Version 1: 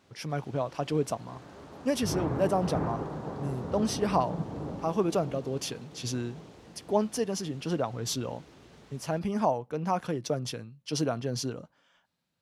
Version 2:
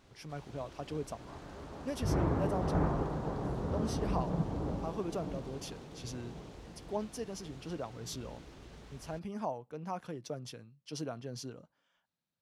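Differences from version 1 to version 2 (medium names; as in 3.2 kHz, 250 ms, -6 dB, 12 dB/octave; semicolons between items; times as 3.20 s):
speech -10.5 dB; background: remove high-pass 100 Hz 12 dB/octave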